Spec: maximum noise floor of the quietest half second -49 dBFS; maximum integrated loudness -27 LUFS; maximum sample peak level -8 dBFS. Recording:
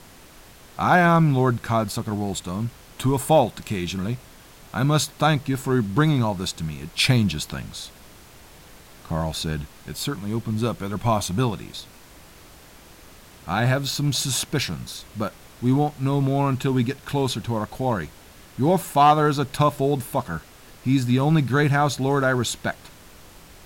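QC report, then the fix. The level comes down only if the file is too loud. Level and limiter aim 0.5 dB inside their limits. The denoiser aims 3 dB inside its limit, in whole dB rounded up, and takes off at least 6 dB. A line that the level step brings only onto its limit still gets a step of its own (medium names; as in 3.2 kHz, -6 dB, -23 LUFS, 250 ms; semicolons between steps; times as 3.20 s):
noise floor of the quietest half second -47 dBFS: fail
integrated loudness -23.0 LUFS: fail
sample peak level -5.5 dBFS: fail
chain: trim -4.5 dB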